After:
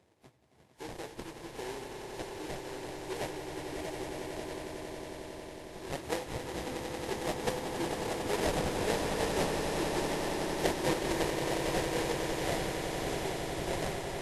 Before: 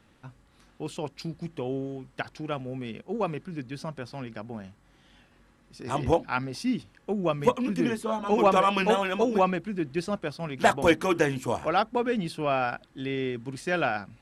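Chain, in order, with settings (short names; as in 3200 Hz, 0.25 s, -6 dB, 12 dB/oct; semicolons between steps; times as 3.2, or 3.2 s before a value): pre-emphasis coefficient 0.8; reverb removal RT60 1.2 s; resonant low shelf 280 Hz -7.5 dB, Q 3; notches 50/100/150/200/250/300/350/400/450/500 Hz; in parallel at -1.5 dB: compressor, threshold -46 dBFS, peak gain reduction 18 dB; on the sum: sample-rate reducer 1300 Hz, jitter 20%; swelling echo 91 ms, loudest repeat 8, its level -9 dB; on a send at -17 dB: reverb RT60 1.1 s, pre-delay 6 ms; on the sum: Vorbis 32 kbps 32000 Hz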